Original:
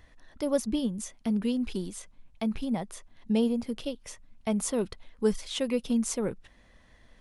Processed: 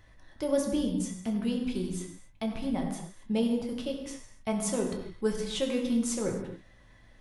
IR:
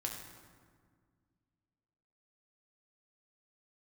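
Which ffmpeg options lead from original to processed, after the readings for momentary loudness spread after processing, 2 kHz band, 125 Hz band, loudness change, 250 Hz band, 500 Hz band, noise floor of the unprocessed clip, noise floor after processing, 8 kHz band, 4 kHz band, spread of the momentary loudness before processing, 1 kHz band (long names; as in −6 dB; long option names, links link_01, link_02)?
10 LU, +0.5 dB, +1.0 dB, −1.0 dB, −1.0 dB, −0.5 dB, −59 dBFS, −56 dBFS, −0.5 dB, −0.5 dB, 12 LU, +0.5 dB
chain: -filter_complex "[1:a]atrim=start_sample=2205,afade=type=out:start_time=0.33:duration=0.01,atrim=end_sample=14994[link_01];[0:a][link_01]afir=irnorm=-1:irlink=0"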